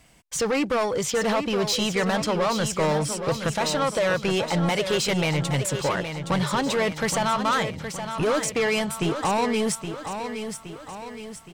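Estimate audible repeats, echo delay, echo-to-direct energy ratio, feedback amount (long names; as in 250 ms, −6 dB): 5, 819 ms, −7.0 dB, 50%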